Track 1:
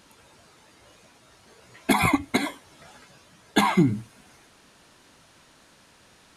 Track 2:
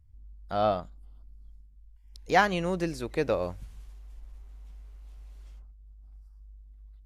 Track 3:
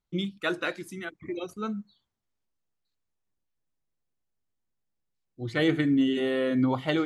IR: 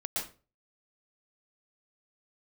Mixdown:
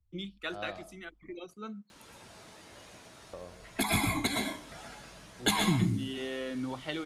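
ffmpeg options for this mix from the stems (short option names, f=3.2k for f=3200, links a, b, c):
-filter_complex "[0:a]adelay=1900,volume=-2.5dB,asplit=2[a][b];[b]volume=-3.5dB[c];[1:a]volume=-16dB,asplit=3[d][e][f];[d]atrim=end=1.33,asetpts=PTS-STARTPTS,afade=t=out:st=1.326:d=0.004:c=hsin[g];[e]atrim=start=1.33:end=3.33,asetpts=PTS-STARTPTS,volume=0[h];[f]atrim=start=3.33,asetpts=PTS-STARTPTS,afade=t=in:d=0.004:c=hsin[i];[g][h][i]concat=n=3:v=0:a=1,asplit=3[j][k][l];[k]volume=-16dB[m];[2:a]highpass=130,adynamicequalizer=threshold=0.00708:dfrequency=3100:dqfactor=0.84:tfrequency=3100:tqfactor=0.84:attack=5:release=100:ratio=0.375:range=3:mode=boostabove:tftype=bell,volume=-9.5dB[n];[l]apad=whole_len=364675[o];[a][o]sidechaincompress=threshold=-53dB:ratio=8:attack=16:release=1210[p];[3:a]atrim=start_sample=2205[q];[c][m]amix=inputs=2:normalize=0[r];[r][q]afir=irnorm=-1:irlink=0[s];[p][j][n][s]amix=inputs=4:normalize=0,acrossover=split=120|3000[t][u][v];[u]acompressor=threshold=-33dB:ratio=3[w];[t][w][v]amix=inputs=3:normalize=0"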